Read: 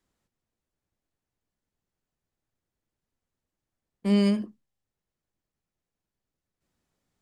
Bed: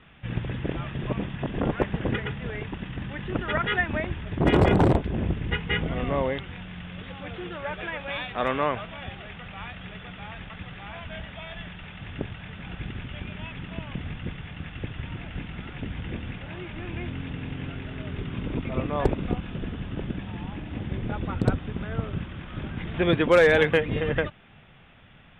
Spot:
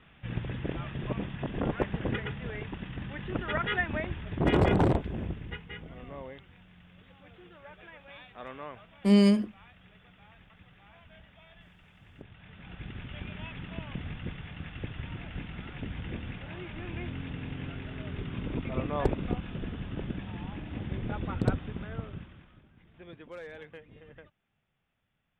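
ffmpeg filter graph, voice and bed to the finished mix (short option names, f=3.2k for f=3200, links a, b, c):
-filter_complex "[0:a]adelay=5000,volume=1.5dB[a];[1:a]volume=8.5dB,afade=t=out:st=4.84:d=0.88:silence=0.237137,afade=t=in:st=12.23:d=1:silence=0.223872,afade=t=out:st=21.53:d=1.09:silence=0.0749894[b];[a][b]amix=inputs=2:normalize=0"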